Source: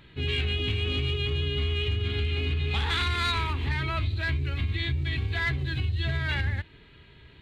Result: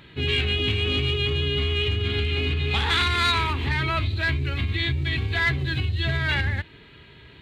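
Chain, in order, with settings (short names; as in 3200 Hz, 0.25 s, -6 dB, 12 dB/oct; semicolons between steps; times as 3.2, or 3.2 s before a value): HPF 100 Hz 6 dB/oct; gain +6 dB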